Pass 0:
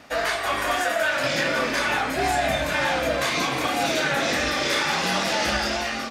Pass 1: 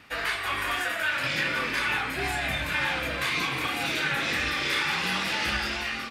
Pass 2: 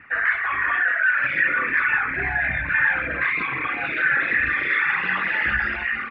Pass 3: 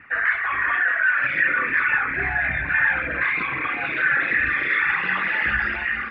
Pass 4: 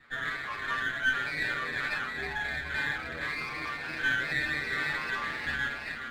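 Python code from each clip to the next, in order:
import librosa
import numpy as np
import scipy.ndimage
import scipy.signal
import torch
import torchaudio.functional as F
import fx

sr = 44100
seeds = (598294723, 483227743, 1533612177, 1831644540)

y1 = fx.graphic_eq_15(x, sr, hz=(100, 250, 630, 2500, 6300), db=(3, -5, -12, 4, -7))
y1 = F.gain(torch.from_numpy(y1), -3.0).numpy()
y2 = fx.envelope_sharpen(y1, sr, power=2.0)
y2 = fx.lowpass_res(y2, sr, hz=1800.0, q=3.2)
y3 = y2 + 10.0 ** (-13.5 / 20.0) * np.pad(y2, (int(426 * sr / 1000.0), 0))[:len(y2)]
y4 = fx.stiff_resonator(y3, sr, f0_hz=78.0, decay_s=0.46, stiffness=0.002)
y4 = fx.running_max(y4, sr, window=5)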